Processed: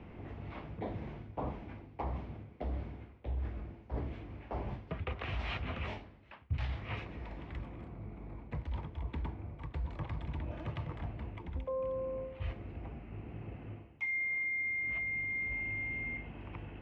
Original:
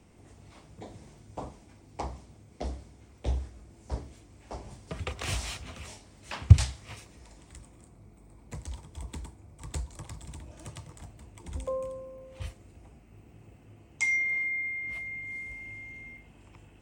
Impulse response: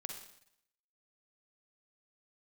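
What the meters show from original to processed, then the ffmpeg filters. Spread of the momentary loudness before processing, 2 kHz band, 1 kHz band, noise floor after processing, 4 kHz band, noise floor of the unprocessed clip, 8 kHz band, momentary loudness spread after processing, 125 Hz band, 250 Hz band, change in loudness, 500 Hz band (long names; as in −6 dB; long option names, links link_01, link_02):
22 LU, −3.0 dB, −0.5 dB, −55 dBFS, −8.5 dB, −56 dBFS, below −30 dB, 14 LU, −8.5 dB, 0.0 dB, −7.5 dB, 0.0 dB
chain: -af "lowpass=frequency=2800:width=0.5412,lowpass=frequency=2800:width=1.3066,areverse,acompressor=threshold=-43dB:ratio=8,areverse,volume=8.5dB"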